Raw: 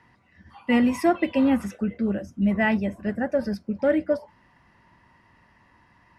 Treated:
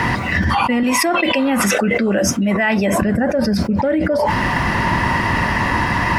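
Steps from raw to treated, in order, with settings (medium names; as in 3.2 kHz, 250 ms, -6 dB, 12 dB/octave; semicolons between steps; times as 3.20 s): 0.83–3.02 s: high-pass 660 Hz 6 dB/octave; level flattener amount 100%; trim +1 dB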